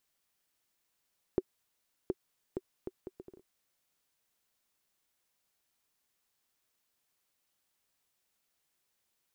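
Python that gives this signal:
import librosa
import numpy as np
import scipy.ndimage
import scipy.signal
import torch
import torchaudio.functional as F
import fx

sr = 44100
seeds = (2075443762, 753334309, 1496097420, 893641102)

y = fx.bouncing_ball(sr, first_gap_s=0.72, ratio=0.65, hz=374.0, decay_ms=41.0, level_db=-16.0)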